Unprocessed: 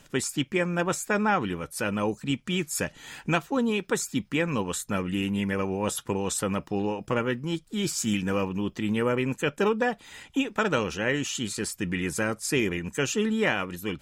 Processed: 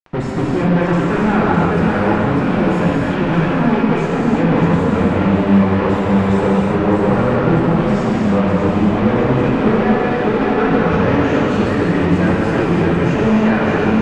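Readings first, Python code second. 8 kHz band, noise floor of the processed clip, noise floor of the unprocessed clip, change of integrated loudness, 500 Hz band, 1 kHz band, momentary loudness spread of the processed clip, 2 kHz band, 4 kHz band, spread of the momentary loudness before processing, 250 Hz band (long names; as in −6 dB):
below −10 dB, −18 dBFS, −57 dBFS, +13.0 dB, +12.5 dB, +13.5 dB, 2 LU, +8.0 dB, +2.0 dB, 5 LU, +14.5 dB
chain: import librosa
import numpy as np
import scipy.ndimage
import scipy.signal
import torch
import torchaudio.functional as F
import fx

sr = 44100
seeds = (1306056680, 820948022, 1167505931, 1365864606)

p1 = fx.low_shelf(x, sr, hz=290.0, db=7.5)
p2 = p1 + fx.echo_thinned(p1, sr, ms=604, feedback_pct=49, hz=210.0, wet_db=-6.0, dry=0)
p3 = fx.fuzz(p2, sr, gain_db=42.0, gate_db=-39.0)
p4 = scipy.signal.sosfilt(scipy.signal.butter(2, 1600.0, 'lowpass', fs=sr, output='sos'), p3)
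p5 = fx.rev_gated(p4, sr, seeds[0], gate_ms=390, shape='flat', drr_db=-5.5)
y = p5 * librosa.db_to_amplitude(-5.0)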